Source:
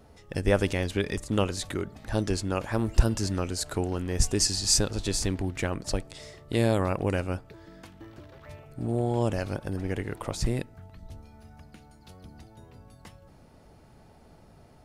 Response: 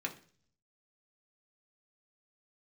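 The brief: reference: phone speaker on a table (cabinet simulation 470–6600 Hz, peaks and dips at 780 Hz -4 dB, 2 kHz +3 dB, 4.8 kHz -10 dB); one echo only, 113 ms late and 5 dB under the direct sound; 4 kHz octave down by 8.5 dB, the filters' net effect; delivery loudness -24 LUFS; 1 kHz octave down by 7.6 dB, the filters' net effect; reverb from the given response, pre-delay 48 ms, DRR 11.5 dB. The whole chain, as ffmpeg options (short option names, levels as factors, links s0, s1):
-filter_complex "[0:a]equalizer=f=1000:t=o:g=-8,equalizer=f=4000:t=o:g=-3.5,aecho=1:1:113:0.562,asplit=2[s0][s1];[1:a]atrim=start_sample=2205,adelay=48[s2];[s1][s2]afir=irnorm=-1:irlink=0,volume=0.2[s3];[s0][s3]amix=inputs=2:normalize=0,highpass=f=470:w=0.5412,highpass=f=470:w=1.3066,equalizer=f=780:t=q:w=4:g=-4,equalizer=f=2000:t=q:w=4:g=3,equalizer=f=4800:t=q:w=4:g=-10,lowpass=f=6600:w=0.5412,lowpass=f=6600:w=1.3066,volume=3.76"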